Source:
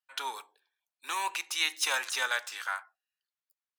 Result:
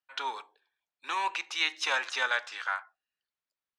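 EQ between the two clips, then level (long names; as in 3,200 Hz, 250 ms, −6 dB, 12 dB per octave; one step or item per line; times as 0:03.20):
high-frequency loss of the air 140 metres
+3.0 dB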